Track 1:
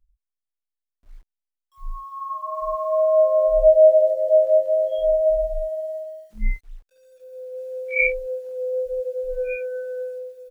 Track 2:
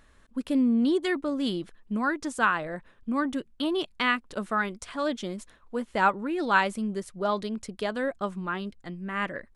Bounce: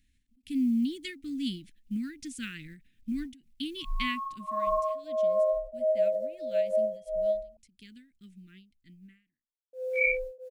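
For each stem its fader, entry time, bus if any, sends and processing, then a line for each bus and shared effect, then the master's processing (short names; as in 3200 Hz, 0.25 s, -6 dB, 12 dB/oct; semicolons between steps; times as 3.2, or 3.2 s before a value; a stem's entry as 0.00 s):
-5.5 dB, 2.05 s, muted 7.57–9.73, no send, compressor 4:1, threshold -25 dBFS, peak gain reduction 13.5 dB; beating tremolo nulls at 1.5 Hz
4.07 s -9.5 dB -> 4.63 s -21 dB, 0.00 s, no send, companded quantiser 8-bit; Chebyshev band-stop 270–2200 Hz, order 3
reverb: off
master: AGC gain up to 7 dB; ending taper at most 140 dB/s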